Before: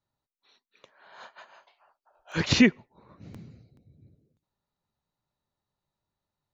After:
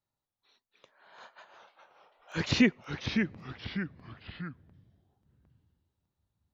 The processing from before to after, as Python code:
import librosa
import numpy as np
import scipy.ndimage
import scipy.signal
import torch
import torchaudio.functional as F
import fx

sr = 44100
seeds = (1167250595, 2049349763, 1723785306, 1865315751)

y = fx.env_lowpass(x, sr, base_hz=2600.0, full_db=-13.5, at=(2.51, 3.38))
y = fx.echo_pitch(y, sr, ms=240, semitones=-2, count=3, db_per_echo=-6.0)
y = y * librosa.db_to_amplitude(-4.5)